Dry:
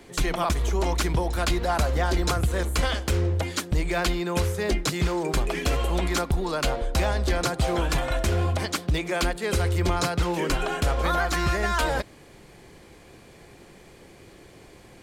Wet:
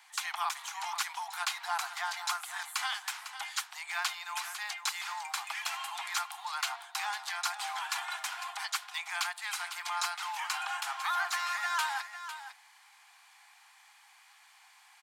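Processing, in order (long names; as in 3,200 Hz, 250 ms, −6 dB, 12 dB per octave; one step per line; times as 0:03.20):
Butterworth high-pass 770 Hz 96 dB per octave
single-tap delay 502 ms −11 dB
level −4.5 dB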